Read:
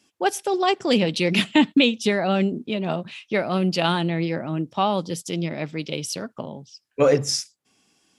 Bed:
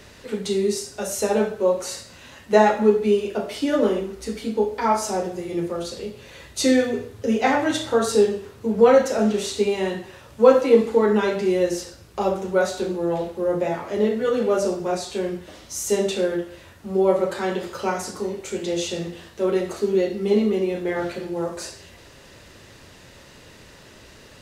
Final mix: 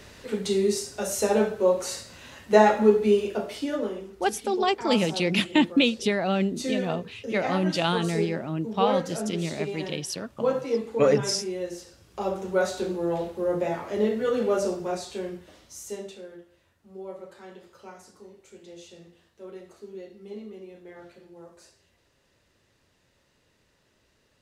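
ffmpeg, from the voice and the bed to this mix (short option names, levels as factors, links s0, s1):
-filter_complex "[0:a]adelay=4000,volume=0.668[s0];[1:a]volume=2.11,afade=t=out:st=3.21:d=0.69:silence=0.316228,afade=t=in:st=11.85:d=0.79:silence=0.398107,afade=t=out:st=14.53:d=1.69:silence=0.141254[s1];[s0][s1]amix=inputs=2:normalize=0"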